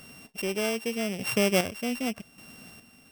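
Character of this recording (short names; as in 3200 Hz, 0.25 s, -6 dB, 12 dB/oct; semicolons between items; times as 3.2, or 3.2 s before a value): a buzz of ramps at a fixed pitch in blocks of 16 samples; chopped level 0.84 Hz, depth 60%, duty 35%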